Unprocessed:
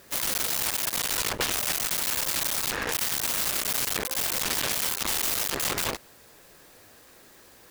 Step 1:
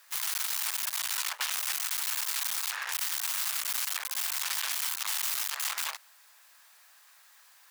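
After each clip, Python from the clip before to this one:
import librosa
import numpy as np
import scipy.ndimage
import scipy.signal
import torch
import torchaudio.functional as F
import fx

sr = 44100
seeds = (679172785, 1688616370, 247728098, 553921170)

y = scipy.signal.sosfilt(scipy.signal.cheby2(4, 60, 260.0, 'highpass', fs=sr, output='sos'), x)
y = y * librosa.db_to_amplitude(-4.0)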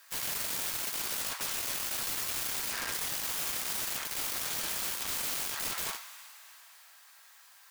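y = fx.rev_double_slope(x, sr, seeds[0], early_s=0.26, late_s=3.3, knee_db=-18, drr_db=5.5)
y = (np.mod(10.0 ** (28.0 / 20.0) * y + 1.0, 2.0) - 1.0) / 10.0 ** (28.0 / 20.0)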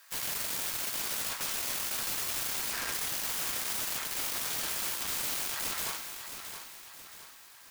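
y = fx.echo_feedback(x, sr, ms=669, feedback_pct=44, wet_db=-9.0)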